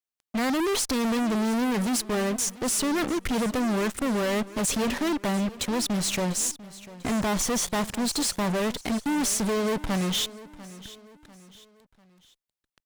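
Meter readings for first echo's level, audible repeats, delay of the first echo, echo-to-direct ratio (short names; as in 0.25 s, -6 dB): -18.0 dB, 3, 0.695 s, -17.0 dB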